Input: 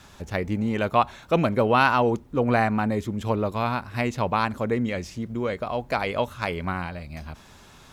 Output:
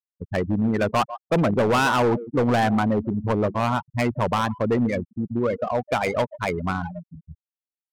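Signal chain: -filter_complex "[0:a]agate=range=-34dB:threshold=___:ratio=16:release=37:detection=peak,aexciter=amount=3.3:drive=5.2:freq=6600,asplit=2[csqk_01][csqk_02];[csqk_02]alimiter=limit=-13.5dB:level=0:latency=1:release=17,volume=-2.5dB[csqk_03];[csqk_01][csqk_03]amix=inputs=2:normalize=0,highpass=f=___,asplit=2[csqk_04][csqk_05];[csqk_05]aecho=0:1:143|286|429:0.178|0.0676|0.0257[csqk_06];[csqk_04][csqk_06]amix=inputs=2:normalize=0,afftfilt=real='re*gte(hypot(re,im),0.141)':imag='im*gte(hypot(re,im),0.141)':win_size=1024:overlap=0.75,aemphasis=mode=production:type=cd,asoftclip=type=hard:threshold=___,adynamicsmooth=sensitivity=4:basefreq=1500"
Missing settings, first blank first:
-39dB, 77, -16dB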